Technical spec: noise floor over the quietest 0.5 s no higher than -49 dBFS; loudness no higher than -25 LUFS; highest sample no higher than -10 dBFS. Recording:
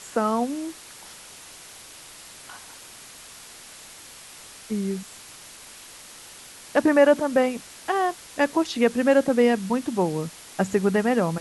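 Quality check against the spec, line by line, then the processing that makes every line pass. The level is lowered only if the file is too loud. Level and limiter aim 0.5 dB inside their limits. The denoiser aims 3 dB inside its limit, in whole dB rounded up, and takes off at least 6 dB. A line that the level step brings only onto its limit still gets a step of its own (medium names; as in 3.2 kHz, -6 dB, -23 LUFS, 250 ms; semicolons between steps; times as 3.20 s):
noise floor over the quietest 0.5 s -45 dBFS: fail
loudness -23.0 LUFS: fail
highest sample -7.0 dBFS: fail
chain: noise reduction 6 dB, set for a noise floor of -45 dBFS; trim -2.5 dB; peak limiter -10.5 dBFS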